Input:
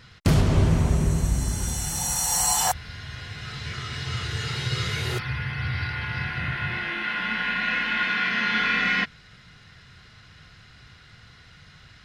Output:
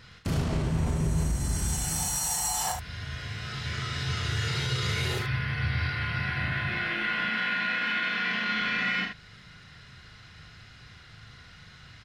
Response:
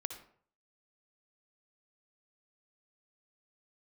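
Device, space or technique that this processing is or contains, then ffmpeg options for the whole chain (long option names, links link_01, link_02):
stacked limiters: -filter_complex "[0:a]alimiter=limit=-15dB:level=0:latency=1:release=262,alimiter=limit=-20dB:level=0:latency=1:release=18,asettb=1/sr,asplit=3[link_01][link_02][link_03];[link_01]atrim=end=7.254[link_04];[link_02]atrim=start=7.25:end=8.54,asetpts=PTS-STARTPTS,afade=type=in:duration=0.004:curve=qsin,afade=type=out:start_time=1.286:duration=0.004:curve=qsin,highpass=160[link_05];[link_03]atrim=start=8.536[link_06];[link_04][link_05]acrossfade=duration=0.004:curve1=hsin:curve2=qsin[link_07];[link_07][link_06]acrossfade=duration=0.004:curve1=qsin:curve2=hsin,aecho=1:1:37|76:0.531|0.422,volume=-1.5dB"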